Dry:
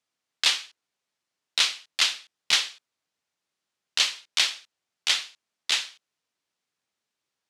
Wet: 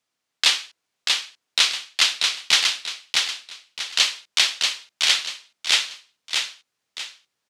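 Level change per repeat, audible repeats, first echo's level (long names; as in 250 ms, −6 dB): −9.5 dB, 3, −3.5 dB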